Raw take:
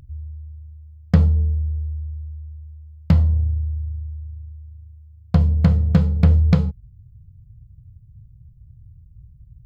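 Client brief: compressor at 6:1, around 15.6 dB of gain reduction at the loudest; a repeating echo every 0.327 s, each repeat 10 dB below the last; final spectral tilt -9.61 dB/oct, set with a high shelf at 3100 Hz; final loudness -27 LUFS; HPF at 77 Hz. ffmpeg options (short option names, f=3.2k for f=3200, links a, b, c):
-af "highpass=77,highshelf=f=3.1k:g=3,acompressor=threshold=-28dB:ratio=6,aecho=1:1:327|654|981|1308:0.316|0.101|0.0324|0.0104,volume=6.5dB"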